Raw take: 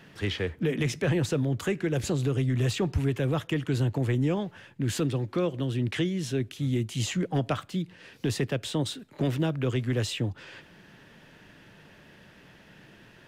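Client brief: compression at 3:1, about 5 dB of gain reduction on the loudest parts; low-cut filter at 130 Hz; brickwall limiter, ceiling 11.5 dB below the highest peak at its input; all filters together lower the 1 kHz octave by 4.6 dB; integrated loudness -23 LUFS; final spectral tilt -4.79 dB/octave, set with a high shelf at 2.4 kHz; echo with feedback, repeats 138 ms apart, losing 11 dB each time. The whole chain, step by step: high-pass 130 Hz; peaking EQ 1 kHz -7.5 dB; treble shelf 2.4 kHz +3.5 dB; compression 3:1, threshold -30 dBFS; peak limiter -29.5 dBFS; feedback delay 138 ms, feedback 28%, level -11 dB; trim +15 dB

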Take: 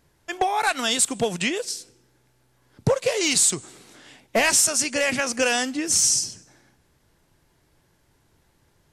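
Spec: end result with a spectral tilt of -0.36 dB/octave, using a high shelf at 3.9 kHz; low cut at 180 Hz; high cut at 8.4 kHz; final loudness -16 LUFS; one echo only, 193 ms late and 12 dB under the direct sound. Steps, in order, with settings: high-pass 180 Hz; low-pass 8.4 kHz; treble shelf 3.9 kHz +5.5 dB; delay 193 ms -12 dB; trim +3.5 dB

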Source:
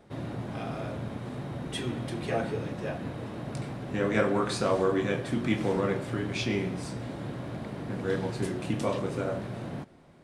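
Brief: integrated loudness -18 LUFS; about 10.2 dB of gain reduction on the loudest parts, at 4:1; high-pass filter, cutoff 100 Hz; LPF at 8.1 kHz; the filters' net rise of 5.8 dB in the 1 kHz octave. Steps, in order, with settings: high-pass 100 Hz; low-pass 8.1 kHz; peaking EQ 1 kHz +7.5 dB; compression 4:1, threshold -31 dBFS; trim +17.5 dB

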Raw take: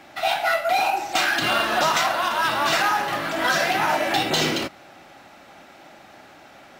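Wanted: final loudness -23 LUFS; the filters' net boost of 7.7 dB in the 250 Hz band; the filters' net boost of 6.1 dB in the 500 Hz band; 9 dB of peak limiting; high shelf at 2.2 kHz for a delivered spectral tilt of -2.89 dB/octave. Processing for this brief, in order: peaking EQ 250 Hz +7.5 dB; peaking EQ 500 Hz +7 dB; treble shelf 2.2 kHz +3 dB; trim -0.5 dB; peak limiter -15 dBFS

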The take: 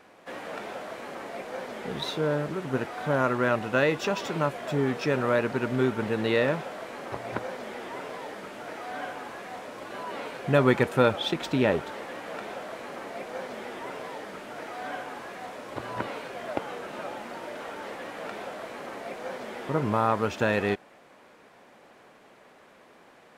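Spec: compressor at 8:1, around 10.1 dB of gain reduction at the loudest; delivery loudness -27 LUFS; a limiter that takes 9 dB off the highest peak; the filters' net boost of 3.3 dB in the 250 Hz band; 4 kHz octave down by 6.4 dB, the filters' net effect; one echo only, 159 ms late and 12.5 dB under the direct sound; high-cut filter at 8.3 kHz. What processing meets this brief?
low-pass 8.3 kHz; peaking EQ 250 Hz +4 dB; peaking EQ 4 kHz -8 dB; compression 8:1, threshold -25 dBFS; peak limiter -22 dBFS; delay 159 ms -12.5 dB; trim +8 dB

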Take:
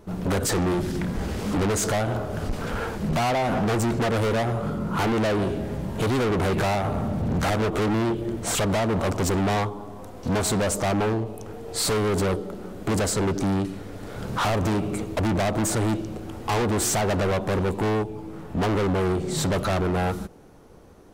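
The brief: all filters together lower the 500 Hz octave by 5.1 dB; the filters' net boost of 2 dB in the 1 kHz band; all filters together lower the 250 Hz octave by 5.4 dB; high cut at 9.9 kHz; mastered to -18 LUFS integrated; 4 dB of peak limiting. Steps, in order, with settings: low-pass 9.9 kHz; peaking EQ 250 Hz -6 dB; peaking EQ 500 Hz -6.5 dB; peaking EQ 1 kHz +5.5 dB; trim +10 dB; peak limiter -8.5 dBFS

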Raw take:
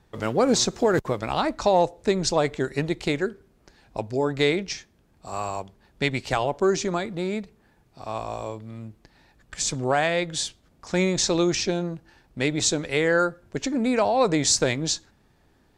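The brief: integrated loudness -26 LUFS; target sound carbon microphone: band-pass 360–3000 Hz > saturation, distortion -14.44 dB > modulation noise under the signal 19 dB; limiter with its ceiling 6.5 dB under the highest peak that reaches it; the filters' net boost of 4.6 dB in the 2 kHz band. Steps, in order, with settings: peaking EQ 2 kHz +6.5 dB; peak limiter -12.5 dBFS; band-pass 360–3000 Hz; saturation -19 dBFS; modulation noise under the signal 19 dB; trim +3.5 dB

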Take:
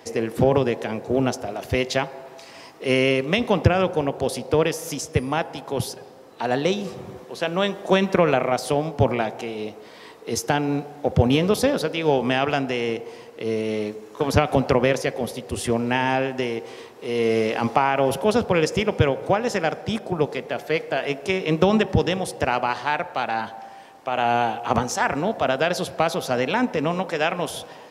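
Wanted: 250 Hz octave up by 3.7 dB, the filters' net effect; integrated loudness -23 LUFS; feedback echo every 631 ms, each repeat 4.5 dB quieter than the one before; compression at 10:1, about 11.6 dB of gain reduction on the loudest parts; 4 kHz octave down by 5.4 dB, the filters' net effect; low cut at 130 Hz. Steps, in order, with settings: high-pass 130 Hz; peaking EQ 250 Hz +5 dB; peaking EQ 4 kHz -8 dB; compression 10:1, threshold -24 dBFS; feedback delay 631 ms, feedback 60%, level -4.5 dB; trim +5.5 dB

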